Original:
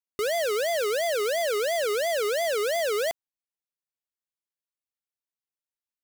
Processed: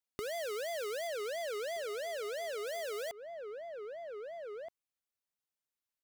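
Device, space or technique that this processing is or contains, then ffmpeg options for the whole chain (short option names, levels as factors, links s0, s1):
serial compression, peaks first: -filter_complex "[0:a]asettb=1/sr,asplit=3[s0][s1][s2];[s0]atrim=end=1.074[s3];[s1]atrim=start=1.07:end=2.67,asetpts=PTS-STARTPTS,afade=t=in:d=0.004:c=qsin,afade=t=out:st=1.596:d=0.004:c=qsin,highshelf=f=8600:g=-5[s4];[s2]atrim=start=2.666[s5];[s3][s4]acrossfade=d=0.004:c1=hsin:c2=qsin[s6];[s6][s5]acrossfade=d=0.004:c1=qsin:c2=hsin,asplit=2[s7][s8];[s8]adelay=1574,volume=0.158,highshelf=f=4000:g=-35.4[s9];[s7][s9]amix=inputs=2:normalize=0,acompressor=threshold=0.0158:ratio=6,acompressor=threshold=0.01:ratio=2.5"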